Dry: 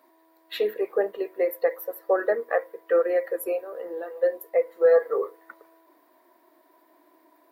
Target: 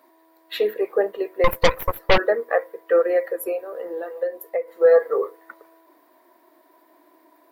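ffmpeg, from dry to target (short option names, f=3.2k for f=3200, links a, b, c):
-filter_complex "[0:a]asettb=1/sr,asplit=3[a][b][c];[a]atrim=end=1.444[d];[b]atrim=start=1.44:end=2.18,asetpts=PTS-STARTPTS,afade=t=in:d=0.004:c=qsin,afade=t=out:st=0.736:d=0.004:c=qsin,aeval=exprs='0.282*(cos(1*acos(clip(val(0)/0.282,-1,1)))-cos(1*PI/2))+0.112*(cos(8*acos(clip(val(0)/0.282,-1,1)))-cos(8*PI/2))':c=same[e];[c]atrim=start=2.176[f];[d][e]acrossfade=d=0.004:c1=hsin:c2=qsin[g];[g][f]acrossfade=d=0.004:c1=qsin:c2=hsin,asettb=1/sr,asplit=3[h][i][j];[h]atrim=end=3.294[k];[i]atrim=start=3.29:end=4.68,asetpts=PTS-STARTPTS,afade=t=in:d=0.004:c=qsin,afade=t=out:st=1.386:d=0.004:c=qsin,acompressor=threshold=-25dB:ratio=6[l];[j]atrim=start=4.676[m];[k][l]acrossfade=d=0.004:c1=hsin:c2=qsin[n];[n][m]acrossfade=d=0.004:c1=qsin:c2=hsin,volume=3.5dB"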